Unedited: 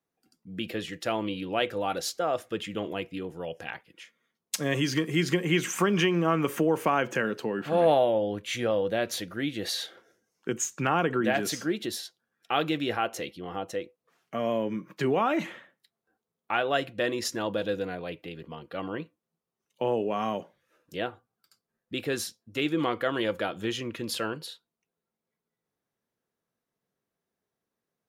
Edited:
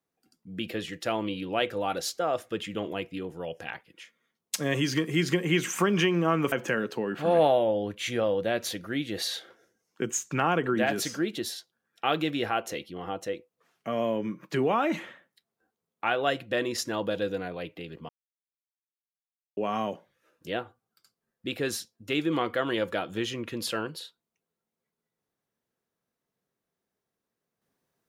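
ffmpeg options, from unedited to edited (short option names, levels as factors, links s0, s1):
-filter_complex "[0:a]asplit=4[s0][s1][s2][s3];[s0]atrim=end=6.522[s4];[s1]atrim=start=6.988:end=18.56,asetpts=PTS-STARTPTS,afade=t=out:st=11.568:d=0.004:c=hsin[s5];[s2]atrim=start=18.56:end=20.04,asetpts=PTS-STARTPTS,volume=0[s6];[s3]atrim=start=20.04,asetpts=PTS-STARTPTS,afade=t=in:d=0.004:c=hsin[s7];[s5][s6][s7]concat=n=3:v=0:a=1[s8];[s4][s8]acrossfade=d=0.004:c1=hsin:c2=hsin"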